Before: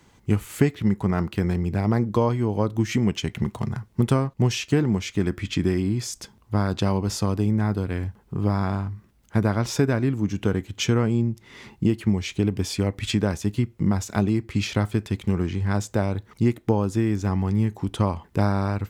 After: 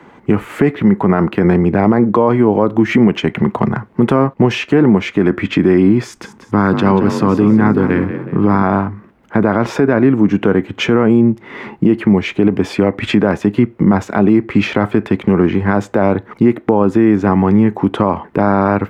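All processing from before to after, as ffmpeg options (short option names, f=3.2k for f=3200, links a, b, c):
-filter_complex "[0:a]asettb=1/sr,asplit=3[a][b][c];[a]atrim=end=6.044[d];[b]atrim=start=6.04:end=8.63,asetpts=PTS-STARTPTS,afade=t=in:d=0.004:c=qsin,afade=t=out:st=2.586:d=0.004:c=qsin,equalizer=f=620:t=o:w=0.65:g=-9,asplit=5[e][f][g][h][i];[f]adelay=186,afreqshift=40,volume=-11dB[j];[g]adelay=372,afreqshift=80,volume=-18.3dB[k];[h]adelay=558,afreqshift=120,volume=-25.7dB[l];[i]adelay=744,afreqshift=160,volume=-33dB[m];[e][j][k][l][m]amix=inputs=5:normalize=0,atrim=end_sample=114219[n];[c]atrim=start=8.626[o];[d][n]acrossfade=d=0.004:c1=hsin:c2=qsin[p];[p][o]acrossfade=d=0.004:c1=qsin:c2=hsin,acrossover=split=180 2300:gain=0.112 1 0.0631[q][r][s];[q][r][s]amix=inputs=3:normalize=0,alimiter=level_in=19.5dB:limit=-1dB:release=50:level=0:latency=1,volume=-1dB"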